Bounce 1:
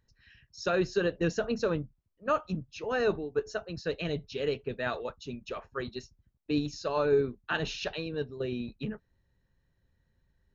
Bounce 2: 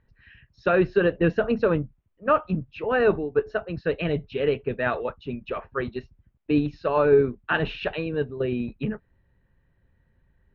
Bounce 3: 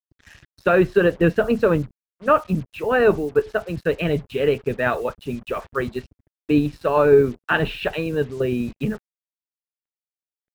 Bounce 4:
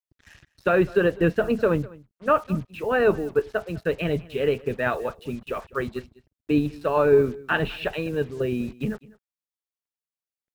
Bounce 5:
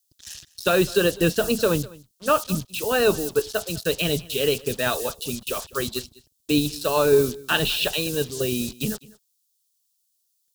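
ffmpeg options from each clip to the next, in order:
ffmpeg -i in.wav -af "lowpass=frequency=2800:width=0.5412,lowpass=frequency=2800:width=1.3066,volume=7.5dB" out.wav
ffmpeg -i in.wav -af "acrusher=bits=7:mix=0:aa=0.5,volume=4dB" out.wav
ffmpeg -i in.wav -af "aecho=1:1:202:0.0794,volume=-3.5dB" out.wav
ffmpeg -i in.wav -af "aexciter=amount=10.3:drive=5.7:freq=3200" out.wav

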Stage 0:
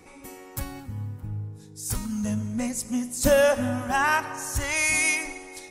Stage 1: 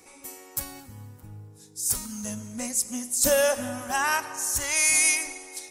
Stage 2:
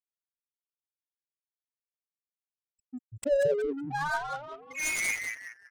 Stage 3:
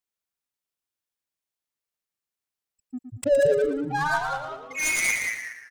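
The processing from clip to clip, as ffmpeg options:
ffmpeg -i in.wav -af "bass=frequency=250:gain=-8,treble=frequency=4000:gain=10,volume=-3dB" out.wav
ffmpeg -i in.wav -filter_complex "[0:a]afftfilt=real='re*gte(hypot(re,im),0.316)':imag='im*gte(hypot(re,im),0.316)':win_size=1024:overlap=0.75,asplit=7[link_01][link_02][link_03][link_04][link_05][link_06][link_07];[link_02]adelay=189,afreqshift=-140,volume=-5dB[link_08];[link_03]adelay=378,afreqshift=-280,volume=-11.7dB[link_09];[link_04]adelay=567,afreqshift=-420,volume=-18.5dB[link_10];[link_05]adelay=756,afreqshift=-560,volume=-25.2dB[link_11];[link_06]adelay=945,afreqshift=-700,volume=-32dB[link_12];[link_07]adelay=1134,afreqshift=-840,volume=-38.7dB[link_13];[link_01][link_08][link_09][link_10][link_11][link_12][link_13]amix=inputs=7:normalize=0,adynamicsmooth=sensitivity=7:basefreq=570,volume=-2.5dB" out.wav
ffmpeg -i in.wav -af "aecho=1:1:115|230|345|460:0.376|0.132|0.046|0.0161,volume=5.5dB" out.wav

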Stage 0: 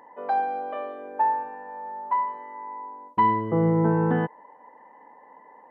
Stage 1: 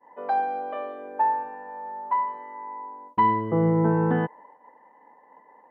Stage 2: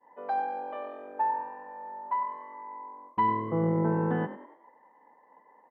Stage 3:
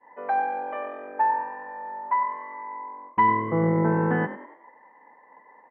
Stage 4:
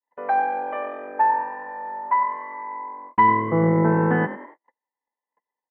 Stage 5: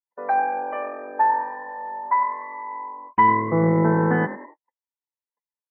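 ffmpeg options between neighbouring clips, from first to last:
ffmpeg -i in.wav -af "agate=range=-33dB:threshold=-46dB:ratio=3:detection=peak" out.wav
ffmpeg -i in.wav -filter_complex "[0:a]asplit=5[link_01][link_02][link_03][link_04][link_05];[link_02]adelay=96,afreqshift=43,volume=-13dB[link_06];[link_03]adelay=192,afreqshift=86,volume=-21dB[link_07];[link_04]adelay=288,afreqshift=129,volume=-28.9dB[link_08];[link_05]adelay=384,afreqshift=172,volume=-36.9dB[link_09];[link_01][link_06][link_07][link_08][link_09]amix=inputs=5:normalize=0,volume=-5.5dB" out.wav
ffmpeg -i in.wav -af "lowpass=frequency=2100:width_type=q:width=2.4,volume=4dB" out.wav
ffmpeg -i in.wav -af "agate=range=-41dB:threshold=-46dB:ratio=16:detection=peak,volume=3.5dB" out.wav
ffmpeg -i in.wav -af "afftdn=noise_reduction=18:noise_floor=-44" out.wav

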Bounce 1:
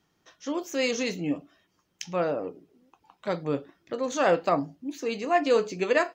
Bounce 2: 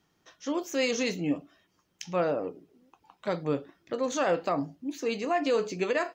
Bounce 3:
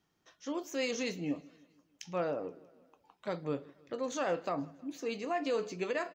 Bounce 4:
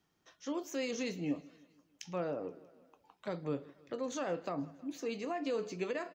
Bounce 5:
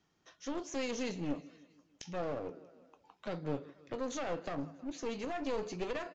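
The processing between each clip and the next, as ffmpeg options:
ffmpeg -i in.wav -af "alimiter=limit=-18dB:level=0:latency=1:release=77" out.wav
ffmpeg -i in.wav -af "aecho=1:1:159|318|477|636:0.0631|0.0366|0.0212|0.0123,volume=-6.5dB" out.wav
ffmpeg -i in.wav -filter_complex "[0:a]acrossover=split=410[link_01][link_02];[link_02]acompressor=threshold=-41dB:ratio=2[link_03];[link_01][link_03]amix=inputs=2:normalize=0" out.wav
ffmpeg -i in.wav -af "aeval=exprs='clip(val(0),-1,0.00708)':channel_layout=same,aresample=16000,aresample=44100,volume=2dB" out.wav

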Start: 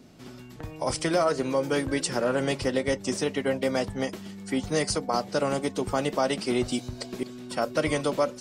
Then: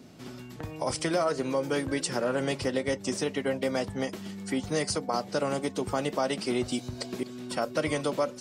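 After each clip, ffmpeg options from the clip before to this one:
ffmpeg -i in.wav -filter_complex "[0:a]asplit=2[link_01][link_02];[link_02]acompressor=threshold=-33dB:ratio=6,volume=2dB[link_03];[link_01][link_03]amix=inputs=2:normalize=0,highpass=61,volume=-5.5dB" out.wav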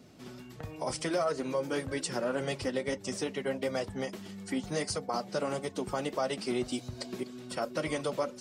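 ffmpeg -i in.wav -af "flanger=delay=1.5:depth=4:regen=-45:speed=1.6:shape=sinusoidal" out.wav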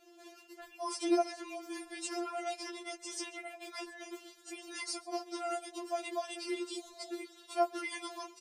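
ffmpeg -i in.wav -af "aecho=1:1:135:0.0794,afftfilt=real='re*4*eq(mod(b,16),0)':imag='im*4*eq(mod(b,16),0)':win_size=2048:overlap=0.75" out.wav

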